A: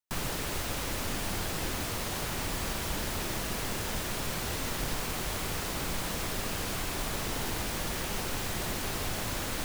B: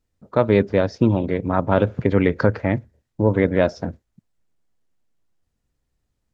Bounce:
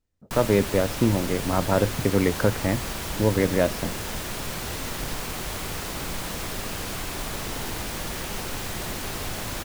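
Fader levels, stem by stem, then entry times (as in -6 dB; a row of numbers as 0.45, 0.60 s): +2.0, -4.0 dB; 0.20, 0.00 s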